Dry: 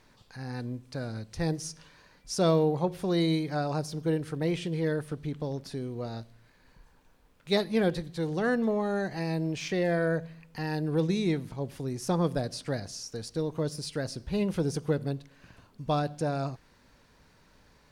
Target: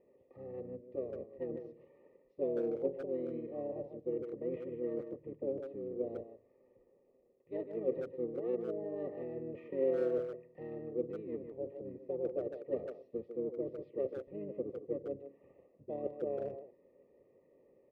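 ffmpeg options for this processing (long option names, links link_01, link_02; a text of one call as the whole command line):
ffmpeg -i in.wav -filter_complex "[0:a]aemphasis=mode=reproduction:type=75fm,areverse,acompressor=threshold=-34dB:ratio=6,areverse,asplit=3[link_01][link_02][link_03];[link_01]bandpass=frequency=530:width_type=q:width=8,volume=0dB[link_04];[link_02]bandpass=frequency=1840:width_type=q:width=8,volume=-6dB[link_05];[link_03]bandpass=frequency=2480:width_type=q:width=8,volume=-9dB[link_06];[link_04][link_05][link_06]amix=inputs=3:normalize=0,asplit=4[link_07][link_08][link_09][link_10];[link_08]asetrate=22050,aresample=44100,atempo=2,volume=-14dB[link_11];[link_09]asetrate=33038,aresample=44100,atempo=1.33484,volume=-4dB[link_12];[link_10]asetrate=35002,aresample=44100,atempo=1.25992,volume=-17dB[link_13];[link_07][link_11][link_12][link_13]amix=inputs=4:normalize=0,adynamicsmooth=sensitivity=2:basefreq=970,asuperstop=centerf=1500:order=12:qfactor=2.4,asplit=2[link_14][link_15];[link_15]adelay=150,highpass=300,lowpass=3400,asoftclip=type=hard:threshold=-39.5dB,volume=-7dB[link_16];[link_14][link_16]amix=inputs=2:normalize=0,volume=8.5dB" out.wav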